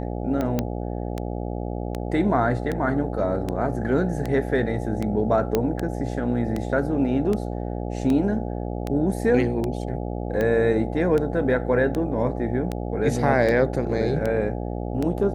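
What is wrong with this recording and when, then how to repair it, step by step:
buzz 60 Hz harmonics 14 -29 dBFS
tick 78 rpm -14 dBFS
0.59 pop -10 dBFS
5.55 pop -8 dBFS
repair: de-click; de-hum 60 Hz, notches 14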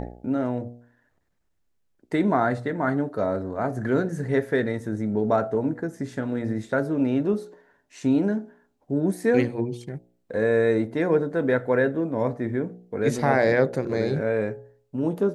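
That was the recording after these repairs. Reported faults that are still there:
none

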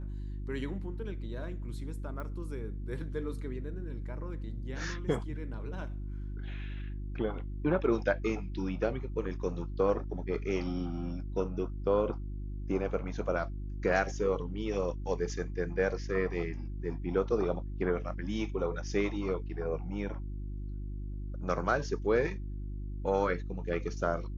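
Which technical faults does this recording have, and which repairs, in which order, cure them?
hum 50 Hz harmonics 7 -38 dBFS
2.2 pop -29 dBFS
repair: de-click; de-hum 50 Hz, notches 7

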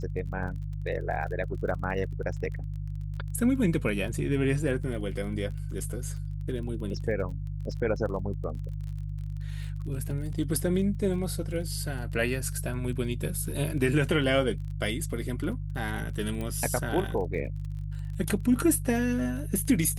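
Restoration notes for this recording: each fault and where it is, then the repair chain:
crackle 26/s -38 dBFS
hum 50 Hz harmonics 3 -34 dBFS
16.41 pop -22 dBFS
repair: de-click; de-hum 50 Hz, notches 3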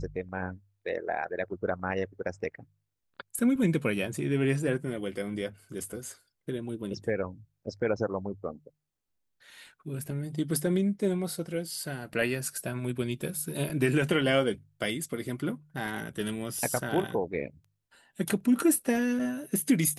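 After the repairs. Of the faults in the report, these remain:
16.41 pop

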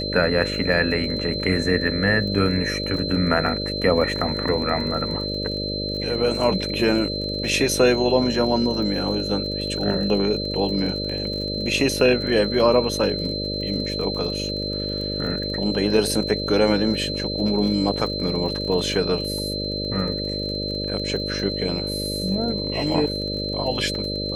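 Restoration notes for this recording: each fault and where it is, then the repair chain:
buzz 50 Hz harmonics 12 -29 dBFS
crackle 35/s -31 dBFS
tone 4100 Hz -28 dBFS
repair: de-click; de-hum 50 Hz, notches 12; notch 4100 Hz, Q 30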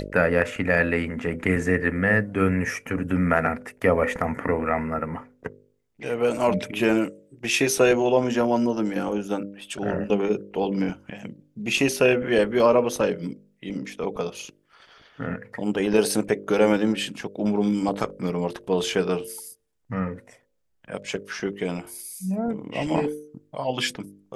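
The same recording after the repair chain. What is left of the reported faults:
none

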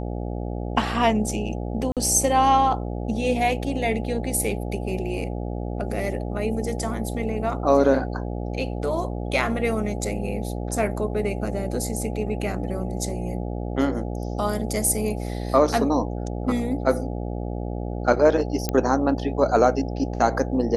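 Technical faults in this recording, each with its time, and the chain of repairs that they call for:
buzz 60 Hz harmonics 14 -29 dBFS
1.92–1.97 gap 47 ms
18.69 pop -9 dBFS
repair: de-click; de-hum 60 Hz, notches 14; interpolate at 1.92, 47 ms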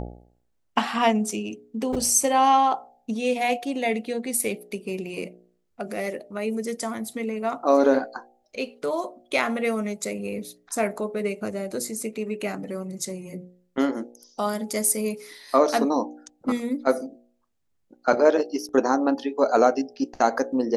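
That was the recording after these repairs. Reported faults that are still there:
none

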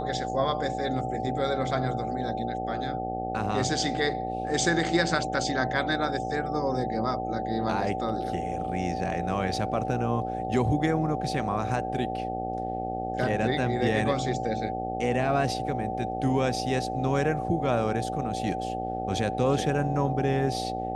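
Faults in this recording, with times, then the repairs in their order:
buzz 60 Hz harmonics 14 -34 dBFS
tone 760 Hz -32 dBFS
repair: de-hum 60 Hz, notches 14; notch 760 Hz, Q 30

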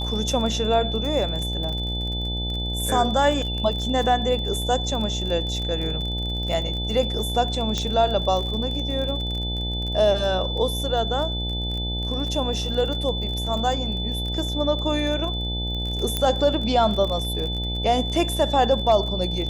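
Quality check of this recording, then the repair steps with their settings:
buzz 60 Hz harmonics 15 -28 dBFS
crackle 32/s -29 dBFS
tone 3500 Hz -29 dBFS
7.78 pop -12 dBFS
16.17 pop -8 dBFS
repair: de-click; notch 3500 Hz, Q 30; de-hum 60 Hz, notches 15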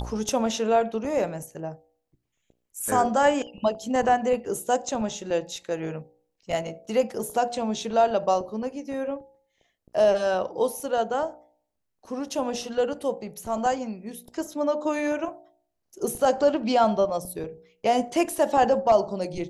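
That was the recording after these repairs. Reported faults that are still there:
16.17 pop

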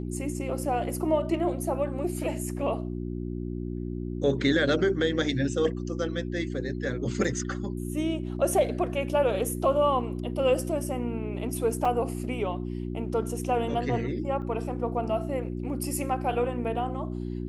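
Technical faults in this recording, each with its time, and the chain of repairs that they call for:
hum 60 Hz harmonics 6 -33 dBFS
7.24 gap 4.2 ms
11.85 gap 3.9 ms
14.42–14.43 gap 6.4 ms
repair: de-hum 60 Hz, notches 6; interpolate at 7.24, 4.2 ms; interpolate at 11.85, 3.9 ms; interpolate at 14.42, 6.4 ms

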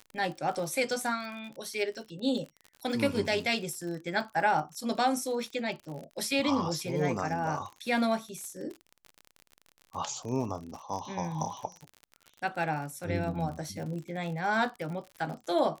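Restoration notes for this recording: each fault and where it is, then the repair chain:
crackle 46/s -37 dBFS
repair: de-click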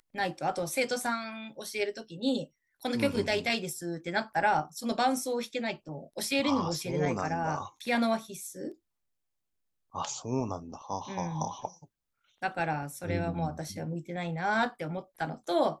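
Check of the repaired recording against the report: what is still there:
none

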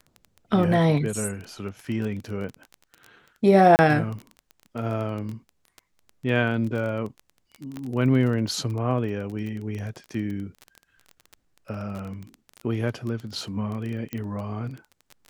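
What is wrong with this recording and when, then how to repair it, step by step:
crackle 20/s -30 dBFS
3.76–3.79 gap 29 ms
7.77 pop -21 dBFS
14.13 pop -18 dBFS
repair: de-click; interpolate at 3.76, 29 ms

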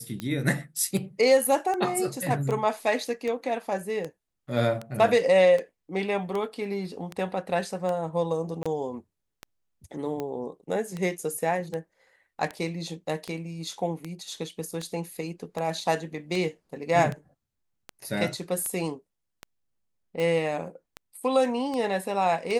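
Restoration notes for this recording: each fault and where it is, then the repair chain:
tick 78 rpm -19 dBFS
8.63–8.66 gap 26 ms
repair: de-click; interpolate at 8.63, 26 ms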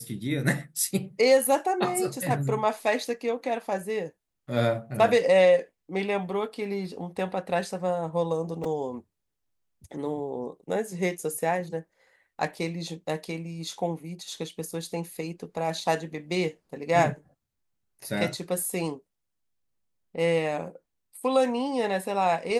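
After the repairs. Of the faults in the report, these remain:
none

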